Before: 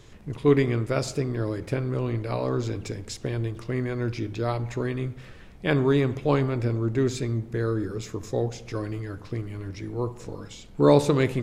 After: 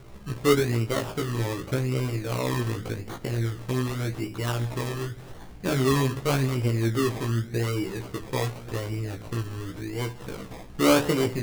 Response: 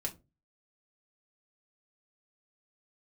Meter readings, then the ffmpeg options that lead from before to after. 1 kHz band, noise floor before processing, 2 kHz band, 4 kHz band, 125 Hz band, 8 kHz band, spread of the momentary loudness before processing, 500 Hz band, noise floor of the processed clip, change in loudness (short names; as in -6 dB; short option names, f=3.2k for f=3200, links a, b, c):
+1.0 dB, -45 dBFS, +2.0 dB, +5.5 dB, 0.0 dB, +5.0 dB, 13 LU, -2.5 dB, -43 dBFS, -0.5 dB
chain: -filter_complex "[0:a]asplit=2[a][b];[b]acompressor=threshold=-38dB:ratio=6,volume=1dB[c];[a][c]amix=inputs=2:normalize=0,acrusher=samples=24:mix=1:aa=0.000001:lfo=1:lforange=14.4:lforate=0.87,flanger=delay=15:depth=3:speed=0.49"